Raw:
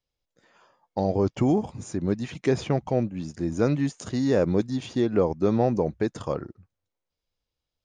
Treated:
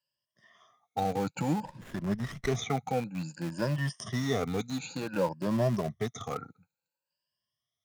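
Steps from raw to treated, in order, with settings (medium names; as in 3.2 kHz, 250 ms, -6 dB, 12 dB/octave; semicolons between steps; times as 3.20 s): drifting ripple filter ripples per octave 1.3, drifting +0.56 Hz, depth 23 dB; in parallel at -11.5 dB: Schmitt trigger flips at -21 dBFS; on the sum: high-pass 120 Hz 24 dB/octave; peaking EQ 350 Hz -12.5 dB 1.3 oct; 1.65–2.55 s: sliding maximum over 9 samples; trim -5 dB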